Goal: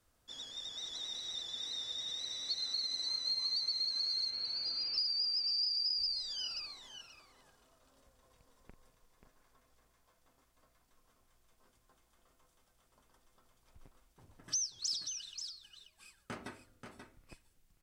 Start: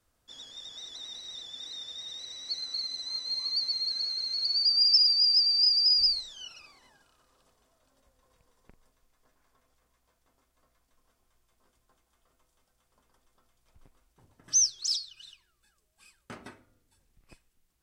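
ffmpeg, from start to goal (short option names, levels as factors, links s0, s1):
-filter_complex "[0:a]asettb=1/sr,asplit=3[s0][s1][s2];[s0]atrim=end=4.304[s3];[s1]atrim=start=4.3:end=4.98,asetpts=PTS-STARTPTS,afade=t=in:d=0.004:c=qsin,afade=t=out:st=0.676:d=0.004:c=qsin,lowpass=f=3200:w=0.5412,lowpass=f=3200:w=1.3066[s4];[s2]atrim=start=4.976[s5];[s3][s4]acrossfade=d=0.004:c1=hsin:c2=qsin[s6];[s6][s5]acrossfade=d=0.004:c1=qsin:c2=hsin,acompressor=threshold=0.0224:ratio=10,asplit=2[s7][s8];[s8]aecho=0:1:534:0.422[s9];[s7][s9]amix=inputs=2:normalize=0"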